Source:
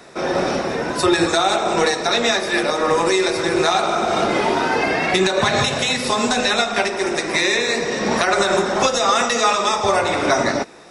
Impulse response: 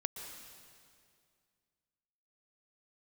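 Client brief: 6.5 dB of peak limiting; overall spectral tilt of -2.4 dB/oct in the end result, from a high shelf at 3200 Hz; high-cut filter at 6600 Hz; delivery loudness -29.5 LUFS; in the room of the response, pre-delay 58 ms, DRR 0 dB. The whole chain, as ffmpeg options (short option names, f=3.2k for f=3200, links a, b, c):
-filter_complex "[0:a]lowpass=6.6k,highshelf=f=3.2k:g=8,alimiter=limit=-8.5dB:level=0:latency=1,asplit=2[a][b];[1:a]atrim=start_sample=2205,adelay=58[c];[b][c]afir=irnorm=-1:irlink=0,volume=-0.5dB[d];[a][d]amix=inputs=2:normalize=0,volume=-14.5dB"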